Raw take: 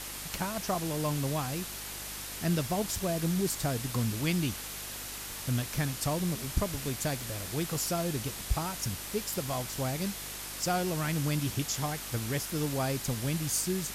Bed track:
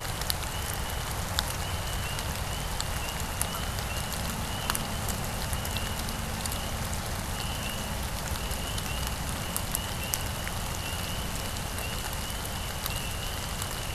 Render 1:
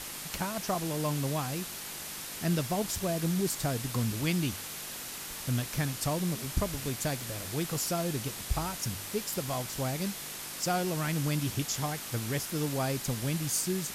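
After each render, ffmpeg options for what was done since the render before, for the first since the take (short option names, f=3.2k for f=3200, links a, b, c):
-af "bandreject=f=50:t=h:w=4,bandreject=f=100:t=h:w=4"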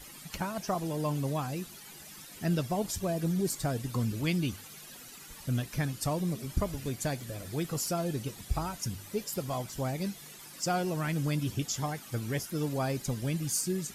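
-af "afftdn=nr=13:nf=-41"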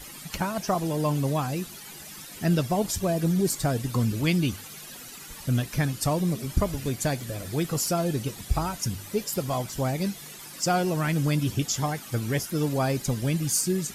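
-af "volume=6dB"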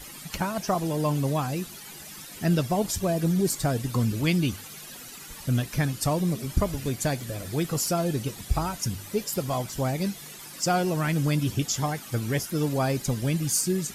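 -af anull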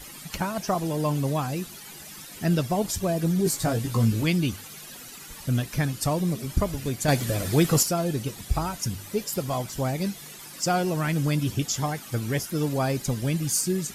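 -filter_complex "[0:a]asettb=1/sr,asplit=3[a][b][c];[a]atrim=end=3.444[d];[b]atrim=start=3.44:end=4.24,asetpts=PTS-STARTPTS,afade=t=in:d=0.004:c=qsin,afade=t=out:st=0.796:d=0.004:c=qsin,asplit=2[e][f];[f]adelay=18,volume=-3.5dB[g];[e][g]amix=inputs=2:normalize=0,atrim=end_sample=35280[h];[c]atrim=start=4.236[i];[d][h]acrossfade=d=0.004:c1=hsin:c2=qsin[j];[j][i]acrossfade=d=0.004:c1=qsin:c2=hsin,asettb=1/sr,asplit=3[k][l][m];[k]atrim=end=7.084[n];[l]atrim=start=7.08:end=7.83,asetpts=PTS-STARTPTS,afade=t=in:d=0.004:c=qsin,afade=t=out:st=0.746:d=0.004:c=qsin,acontrast=85[o];[m]atrim=start=7.826[p];[n][o]acrossfade=d=0.004:c1=hsin:c2=qsin[q];[q][p]acrossfade=d=0.004:c1=qsin:c2=hsin"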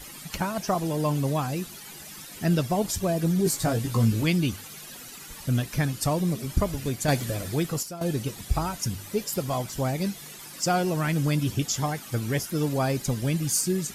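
-filter_complex "[0:a]asplit=2[a][b];[a]atrim=end=8.01,asetpts=PTS-STARTPTS,afade=t=out:st=6.89:d=1.12:silence=0.199526[c];[b]atrim=start=8.01,asetpts=PTS-STARTPTS,afade=t=in:d=0.004:c=hsin:silence=0.199526[d];[c][d]concat=n=2:v=0:a=1"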